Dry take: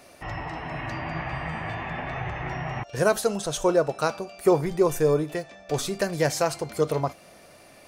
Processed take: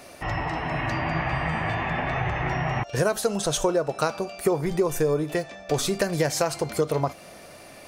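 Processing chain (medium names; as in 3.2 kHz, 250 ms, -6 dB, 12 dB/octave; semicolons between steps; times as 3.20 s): compression 6:1, threshold -25 dBFS, peak gain reduction 10.5 dB; trim +5.5 dB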